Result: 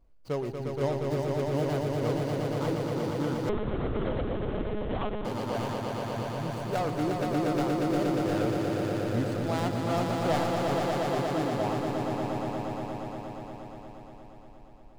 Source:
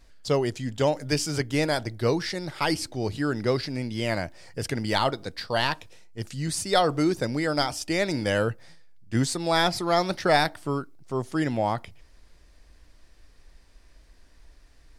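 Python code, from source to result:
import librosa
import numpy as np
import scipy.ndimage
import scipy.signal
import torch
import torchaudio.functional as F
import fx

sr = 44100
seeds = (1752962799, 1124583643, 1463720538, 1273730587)

y = scipy.ndimage.median_filter(x, 25, mode='constant')
y = fx.echo_swell(y, sr, ms=118, loudest=5, wet_db=-4.5)
y = fx.lpc_monotone(y, sr, seeds[0], pitch_hz=210.0, order=10, at=(3.49, 5.25))
y = F.gain(torch.from_numpy(y), -7.5).numpy()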